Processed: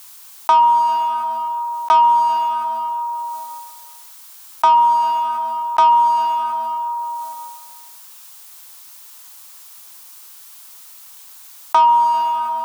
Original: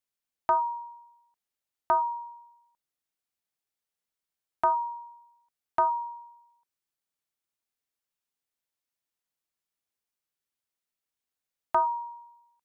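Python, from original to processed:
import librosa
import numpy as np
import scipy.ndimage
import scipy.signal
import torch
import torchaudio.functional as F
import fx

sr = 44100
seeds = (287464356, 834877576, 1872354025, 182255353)

y = fx.octave_divider(x, sr, octaves=2, level_db=1.0)
y = scipy.signal.sosfilt(scipy.signal.butter(2, 50.0, 'highpass', fs=sr, output='sos'), y)
y = fx.tilt_eq(y, sr, slope=2.5)
y = fx.leveller(y, sr, passes=2)
y = fx.graphic_eq(y, sr, hz=(125, 250, 500, 1000, 2000), db=(-10, -4, -7, 8, -4))
y = fx.rev_plate(y, sr, seeds[0], rt60_s=1.7, hf_ratio=0.8, predelay_ms=110, drr_db=16.5)
y = fx.env_flatten(y, sr, amount_pct=70)
y = y * 10.0 ** (3.5 / 20.0)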